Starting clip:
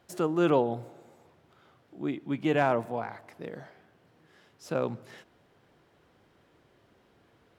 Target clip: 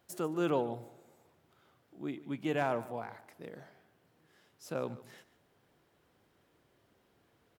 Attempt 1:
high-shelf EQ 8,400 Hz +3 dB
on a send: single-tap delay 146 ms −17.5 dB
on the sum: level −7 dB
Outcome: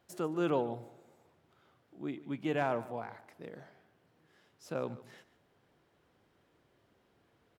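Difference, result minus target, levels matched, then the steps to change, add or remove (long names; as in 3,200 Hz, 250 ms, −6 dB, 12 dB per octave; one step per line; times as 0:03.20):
8,000 Hz band −4.5 dB
change: high-shelf EQ 8,400 Hz +12.5 dB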